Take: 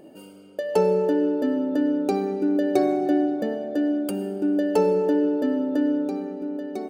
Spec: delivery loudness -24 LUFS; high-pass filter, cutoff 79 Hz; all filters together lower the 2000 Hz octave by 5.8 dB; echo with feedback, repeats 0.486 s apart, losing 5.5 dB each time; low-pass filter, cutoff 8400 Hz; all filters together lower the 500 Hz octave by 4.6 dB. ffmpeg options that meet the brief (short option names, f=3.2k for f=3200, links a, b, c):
-af "highpass=79,lowpass=8.4k,equalizer=f=500:t=o:g=-5.5,equalizer=f=2k:t=o:g=-7,aecho=1:1:486|972|1458|1944|2430|2916|3402:0.531|0.281|0.149|0.079|0.0419|0.0222|0.0118"